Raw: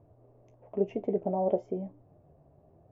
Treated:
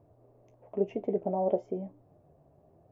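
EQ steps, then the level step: low shelf 120 Hz -5.5 dB; 0.0 dB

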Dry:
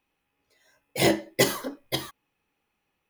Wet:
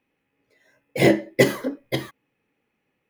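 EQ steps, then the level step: graphic EQ 125/250/500/2000 Hz +10/+10/+10/+10 dB; -5.5 dB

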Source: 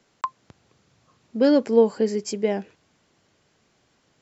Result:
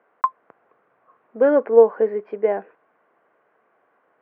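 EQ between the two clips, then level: air absorption 340 m; speaker cabinet 450–2100 Hz, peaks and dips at 470 Hz +5 dB, 690 Hz +5 dB, 1100 Hz +6 dB, 1500 Hz +4 dB; +3.5 dB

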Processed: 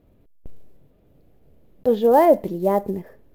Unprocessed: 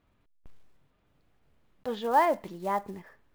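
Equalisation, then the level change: resonant low shelf 770 Hz +11.5 dB, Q 1.5; bell 13000 Hz +15 dB 0.35 oct; +1.5 dB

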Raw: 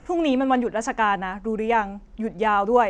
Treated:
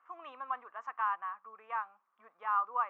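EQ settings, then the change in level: ladder band-pass 1200 Hz, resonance 85%; air absorption 58 m; -5.5 dB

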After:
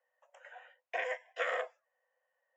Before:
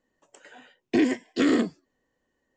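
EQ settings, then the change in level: running mean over 10 samples; rippled Chebyshev high-pass 500 Hz, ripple 3 dB; 0.0 dB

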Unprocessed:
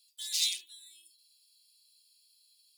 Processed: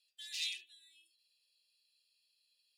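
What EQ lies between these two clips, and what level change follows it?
vowel filter e; high shelf 9200 Hz +9.5 dB; +10.0 dB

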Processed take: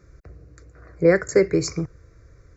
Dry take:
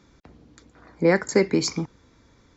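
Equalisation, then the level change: low shelf 260 Hz +11.5 dB; fixed phaser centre 880 Hz, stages 6; +1.5 dB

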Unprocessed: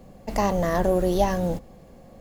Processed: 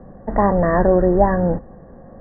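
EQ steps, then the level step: Chebyshev low-pass 1900 Hz, order 8; +7.5 dB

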